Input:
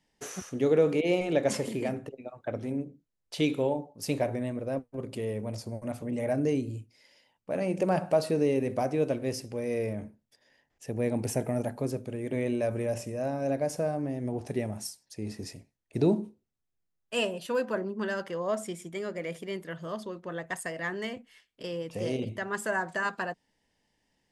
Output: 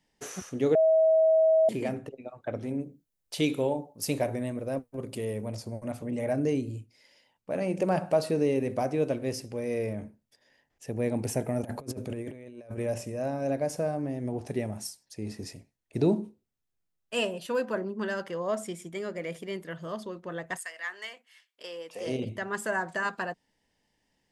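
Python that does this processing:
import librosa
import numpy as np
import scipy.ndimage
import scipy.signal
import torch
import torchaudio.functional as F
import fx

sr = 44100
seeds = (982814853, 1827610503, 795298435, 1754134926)

y = fx.high_shelf(x, sr, hz=8000.0, db=10.0, at=(2.79, 5.48))
y = fx.over_compress(y, sr, threshold_db=-37.0, ratio=-0.5, at=(11.63, 12.78))
y = fx.highpass(y, sr, hz=fx.line((20.57, 1500.0), (22.06, 460.0)), slope=12, at=(20.57, 22.06), fade=0.02)
y = fx.edit(y, sr, fx.bleep(start_s=0.75, length_s=0.94, hz=641.0, db=-18.0), tone=tone)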